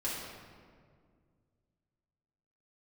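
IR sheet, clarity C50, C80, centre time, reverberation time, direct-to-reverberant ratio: 0.0 dB, 2.0 dB, 97 ms, 2.0 s, −8.5 dB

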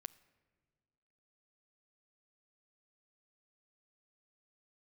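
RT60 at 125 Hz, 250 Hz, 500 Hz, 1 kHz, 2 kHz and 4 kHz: 2.0, 1.9, 1.8, 1.6, 1.4, 1.1 seconds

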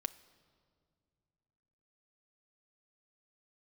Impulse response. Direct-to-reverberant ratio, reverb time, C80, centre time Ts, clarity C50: 10.5 dB, 2.1 s, 19.0 dB, 4 ms, 17.5 dB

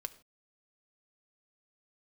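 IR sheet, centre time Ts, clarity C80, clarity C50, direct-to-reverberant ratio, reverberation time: 3 ms, 19.5 dB, 17.0 dB, 9.5 dB, non-exponential decay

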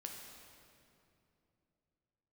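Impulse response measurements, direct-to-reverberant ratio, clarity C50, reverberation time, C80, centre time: 0.5 dB, 2.5 dB, 2.8 s, 4.0 dB, 84 ms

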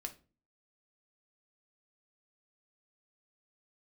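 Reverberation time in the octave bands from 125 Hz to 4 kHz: 0.55, 0.55, 0.40, 0.30, 0.30, 0.25 seconds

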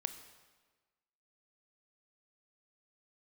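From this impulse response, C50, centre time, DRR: 11.0 dB, 13 ms, 9.0 dB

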